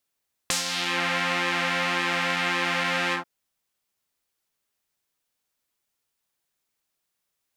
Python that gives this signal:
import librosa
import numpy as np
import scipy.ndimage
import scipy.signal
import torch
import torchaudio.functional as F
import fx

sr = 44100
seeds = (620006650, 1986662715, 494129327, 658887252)

y = fx.sub_patch_pwm(sr, seeds[0], note=53, wave2='saw', interval_st=7, detune_cents=22, level2_db=-1.0, sub_db=-20.0, noise_db=-30.0, kind='bandpass', cutoff_hz=960.0, q=1.3, env_oct=3.0, env_decay_s=0.48, env_sustain_pct=40, attack_ms=1.8, decay_s=0.13, sustain_db=-8, release_s=0.11, note_s=2.63, lfo_hz=1.8, width_pct=41, width_swing_pct=17)